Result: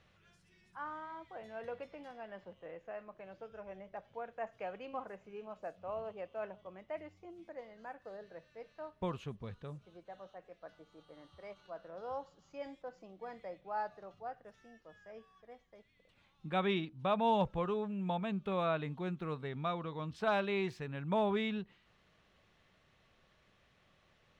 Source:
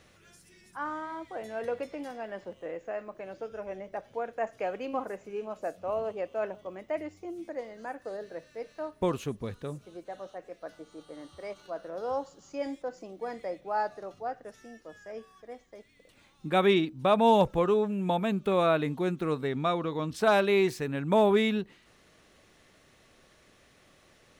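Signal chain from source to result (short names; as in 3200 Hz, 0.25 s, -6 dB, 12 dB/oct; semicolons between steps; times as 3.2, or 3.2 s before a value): EQ curve 190 Hz 0 dB, 270 Hz -8 dB, 980 Hz -1 dB, 2000 Hz -3 dB, 3100 Hz -1 dB, 11000 Hz -18 dB; gain -6 dB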